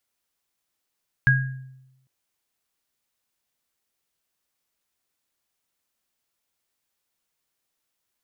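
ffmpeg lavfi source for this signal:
ffmpeg -f lavfi -i "aevalsrc='0.178*pow(10,-3*t/0.95)*sin(2*PI*131*t)+0.224*pow(10,-3*t/0.46)*sin(2*PI*1640*t)':duration=0.8:sample_rate=44100" out.wav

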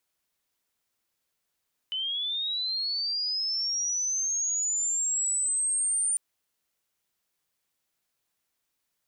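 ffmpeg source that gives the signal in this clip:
ffmpeg -f lavfi -i "aevalsrc='pow(10,(-28+4.5*t/4.25)/20)*sin(2*PI*(3000*t+6100*t*t/(2*4.25)))':duration=4.25:sample_rate=44100" out.wav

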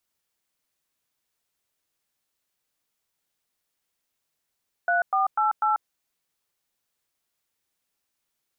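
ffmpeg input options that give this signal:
ffmpeg -f lavfi -i "aevalsrc='0.0794*clip(min(mod(t,0.247),0.14-mod(t,0.247))/0.002,0,1)*(eq(floor(t/0.247),0)*(sin(2*PI*697*mod(t,0.247))+sin(2*PI*1477*mod(t,0.247)))+eq(floor(t/0.247),1)*(sin(2*PI*770*mod(t,0.247))+sin(2*PI*1209*mod(t,0.247)))+eq(floor(t/0.247),2)*(sin(2*PI*852*mod(t,0.247))+sin(2*PI*1336*mod(t,0.247)))+eq(floor(t/0.247),3)*(sin(2*PI*852*mod(t,0.247))+sin(2*PI*1336*mod(t,0.247))))':duration=0.988:sample_rate=44100" out.wav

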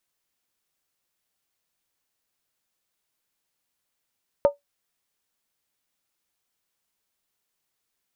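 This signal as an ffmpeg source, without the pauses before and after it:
ffmpeg -f lavfi -i "aevalsrc='0.335*pow(10,-3*t/0.14)*sin(2*PI*571*t)+0.0944*pow(10,-3*t/0.111)*sin(2*PI*910.2*t)+0.0266*pow(10,-3*t/0.096)*sin(2*PI*1219.7*t)+0.0075*pow(10,-3*t/0.092)*sin(2*PI*1311*t)+0.00211*pow(10,-3*t/0.086)*sin(2*PI*1514.9*t)':duration=0.63:sample_rate=44100" out.wav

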